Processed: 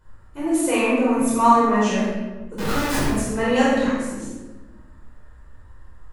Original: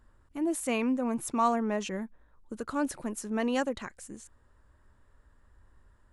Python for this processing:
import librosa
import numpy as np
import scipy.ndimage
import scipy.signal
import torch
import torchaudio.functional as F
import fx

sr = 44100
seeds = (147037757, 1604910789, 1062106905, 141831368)

y = fx.doubler(x, sr, ms=49.0, db=-4.0)
y = fx.schmitt(y, sr, flips_db=-43.5, at=(2.58, 3.06))
y = fx.room_shoebox(y, sr, seeds[0], volume_m3=710.0, walls='mixed', distance_m=4.9)